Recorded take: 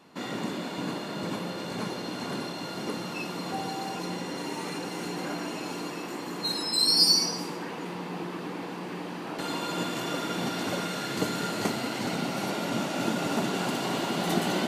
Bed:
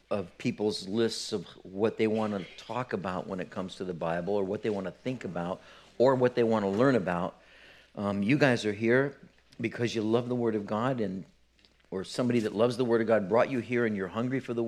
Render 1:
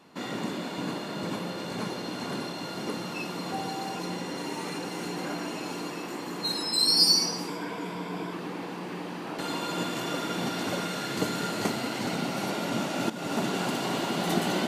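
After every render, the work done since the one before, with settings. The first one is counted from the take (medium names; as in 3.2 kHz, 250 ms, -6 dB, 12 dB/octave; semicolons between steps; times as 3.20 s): 7.48–8.33 s: rippled EQ curve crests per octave 1.7, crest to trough 9 dB; 13.10–13.50 s: fade in equal-power, from -13 dB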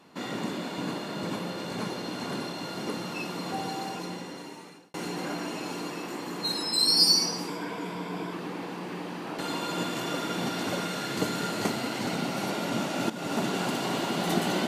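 3.78–4.94 s: fade out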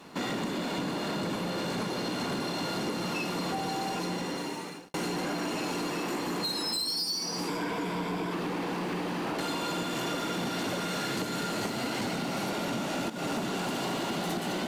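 compression 12:1, threshold -34 dBFS, peak gain reduction 18 dB; waveshaping leveller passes 2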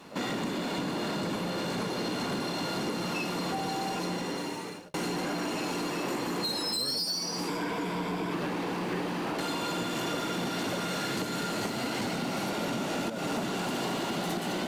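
add bed -18 dB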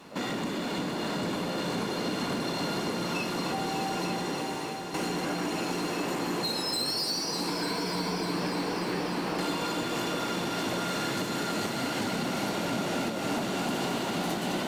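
multi-head delay 298 ms, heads all three, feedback 66%, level -13 dB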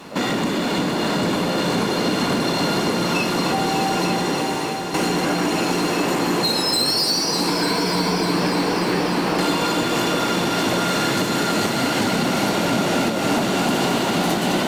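trim +10.5 dB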